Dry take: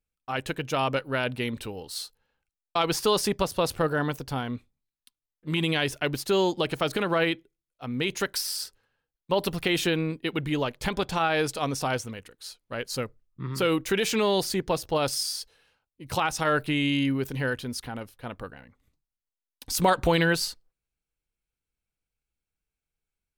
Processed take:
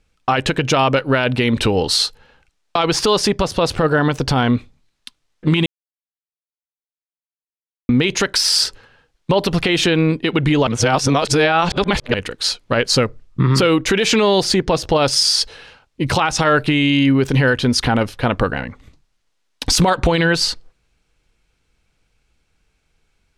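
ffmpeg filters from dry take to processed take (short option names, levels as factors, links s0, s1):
-filter_complex "[0:a]asplit=5[s0][s1][s2][s3][s4];[s0]atrim=end=5.66,asetpts=PTS-STARTPTS,afade=t=out:st=5.656:d=0.004:c=hsin[s5];[s1]atrim=start=5.66:end=7.89,asetpts=PTS-STARTPTS,volume=0[s6];[s2]atrim=start=7.89:end=10.672,asetpts=PTS-STARTPTS,afade=t=in:d=0.004:c=hsin[s7];[s3]atrim=start=10.668:end=12.142,asetpts=PTS-STARTPTS,areverse[s8];[s4]atrim=start=12.138[s9];[s5][s6][s7]concat=n=3:v=0:a=1[s10];[s10][s8]acrossfade=d=0.004:c1=hsin:c2=hsin[s11];[s11][s9]acrossfade=d=0.004:c1=hsin:c2=hsin,lowpass=6100,acompressor=threshold=0.0178:ratio=6,alimiter=level_in=26.6:limit=0.891:release=50:level=0:latency=1,volume=0.596"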